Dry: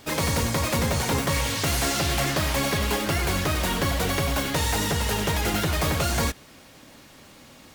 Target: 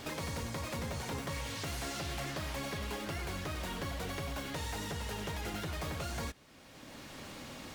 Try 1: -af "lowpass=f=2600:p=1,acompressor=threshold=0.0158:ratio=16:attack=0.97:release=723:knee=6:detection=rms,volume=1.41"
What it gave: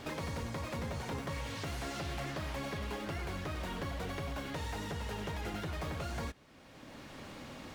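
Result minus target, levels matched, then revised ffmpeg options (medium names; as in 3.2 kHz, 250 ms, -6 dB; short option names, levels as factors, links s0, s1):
8 kHz band -5.0 dB
-af "lowpass=f=7500:p=1,acompressor=threshold=0.0158:ratio=16:attack=0.97:release=723:knee=6:detection=rms,volume=1.41"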